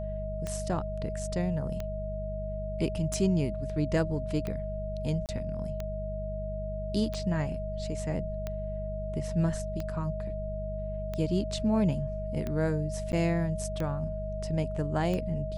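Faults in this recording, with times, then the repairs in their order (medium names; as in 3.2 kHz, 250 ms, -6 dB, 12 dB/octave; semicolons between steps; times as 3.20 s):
hum 50 Hz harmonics 4 -36 dBFS
tick 45 rpm -21 dBFS
whine 630 Hz -36 dBFS
5.26–5.29 s: dropout 28 ms
13.12–13.13 s: dropout 9.9 ms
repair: de-click; de-hum 50 Hz, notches 4; band-stop 630 Hz, Q 30; interpolate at 5.26 s, 28 ms; interpolate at 13.12 s, 9.9 ms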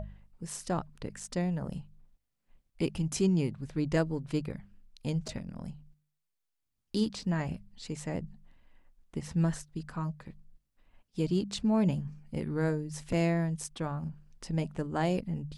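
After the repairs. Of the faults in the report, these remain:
nothing left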